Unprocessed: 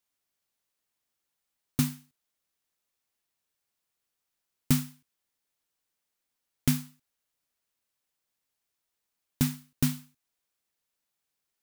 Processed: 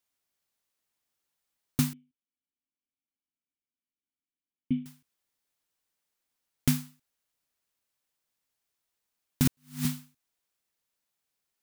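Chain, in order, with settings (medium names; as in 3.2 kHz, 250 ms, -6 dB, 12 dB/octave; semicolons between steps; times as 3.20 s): 1.93–4.86 s: cascade formant filter i; 9.45–9.85 s: reverse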